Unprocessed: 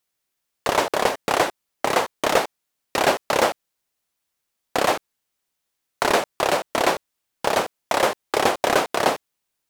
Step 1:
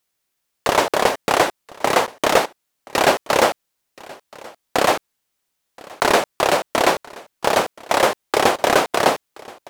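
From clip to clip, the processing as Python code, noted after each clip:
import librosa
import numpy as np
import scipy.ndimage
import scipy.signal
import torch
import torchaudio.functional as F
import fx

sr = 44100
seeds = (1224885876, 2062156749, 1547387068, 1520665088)

y = x + 10.0 ** (-22.5 / 20.0) * np.pad(x, (int(1026 * sr / 1000.0), 0))[:len(x)]
y = F.gain(torch.from_numpy(y), 3.5).numpy()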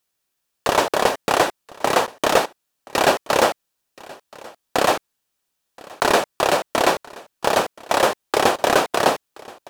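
y = fx.notch(x, sr, hz=2100.0, q=12.0)
y = F.gain(torch.from_numpy(y), -1.0).numpy()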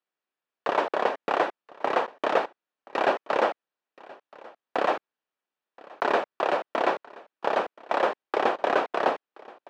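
y = fx.bandpass_edges(x, sr, low_hz=270.0, high_hz=2300.0)
y = F.gain(torch.from_numpy(y), -6.0).numpy()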